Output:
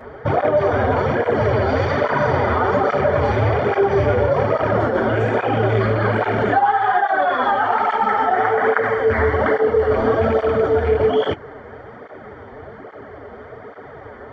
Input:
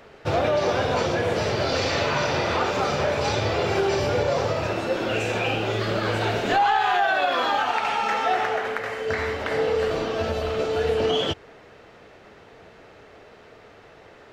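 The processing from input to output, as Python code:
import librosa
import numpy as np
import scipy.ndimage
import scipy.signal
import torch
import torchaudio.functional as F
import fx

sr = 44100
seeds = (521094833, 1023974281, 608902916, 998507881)

p1 = fx.rattle_buzz(x, sr, strikes_db=-27.0, level_db=-15.0)
p2 = fx.over_compress(p1, sr, threshold_db=-28.0, ratio=-1.0)
p3 = p1 + F.gain(torch.from_numpy(p2), 3.0).numpy()
p4 = scipy.signal.savgol_filter(p3, 41, 4, mode='constant')
p5 = fx.notch_comb(p4, sr, f0_hz=170.0)
p6 = fx.flanger_cancel(p5, sr, hz=1.2, depth_ms=7.2)
y = F.gain(torch.from_numpy(p6), 5.5).numpy()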